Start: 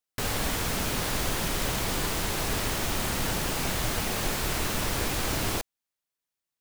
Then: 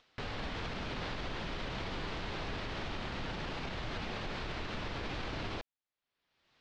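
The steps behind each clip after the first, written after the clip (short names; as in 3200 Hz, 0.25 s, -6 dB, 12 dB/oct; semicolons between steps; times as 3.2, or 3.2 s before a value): LPF 4200 Hz 24 dB/oct; upward compressor, threshold -40 dBFS; limiter -24 dBFS, peak gain reduction 7.5 dB; gain -6 dB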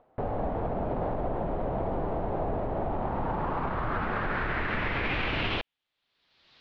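low-pass sweep 700 Hz -> 4200 Hz, 2.77–6.23; gain +8 dB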